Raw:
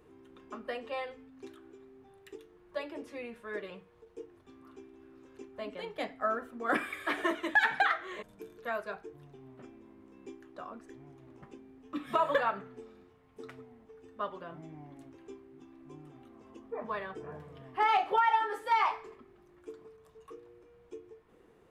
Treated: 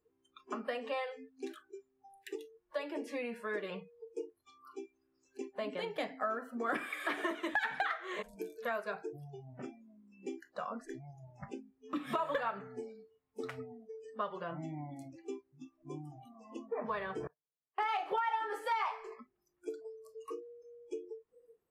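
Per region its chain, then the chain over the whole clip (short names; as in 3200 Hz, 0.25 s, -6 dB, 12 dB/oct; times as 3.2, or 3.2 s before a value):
17.27–18.02 gate -39 dBFS, range -32 dB + low shelf 370 Hz -9 dB
whole clip: spectral noise reduction 29 dB; compressor 3:1, threshold -43 dBFS; gain +7 dB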